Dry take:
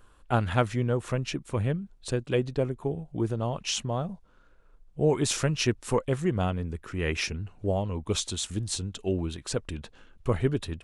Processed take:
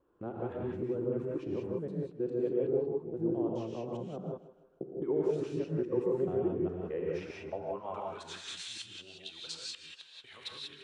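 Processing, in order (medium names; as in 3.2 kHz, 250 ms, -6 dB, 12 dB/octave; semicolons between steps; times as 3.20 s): time reversed locally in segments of 209 ms; peak limiter -20.5 dBFS, peak gain reduction 10.5 dB; band-pass sweep 370 Hz -> 3.7 kHz, 6.66–9.19 s; on a send: thinning echo 158 ms, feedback 45%, high-pass 180 Hz, level -15.5 dB; on the sum: gated-style reverb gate 210 ms rising, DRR -2.5 dB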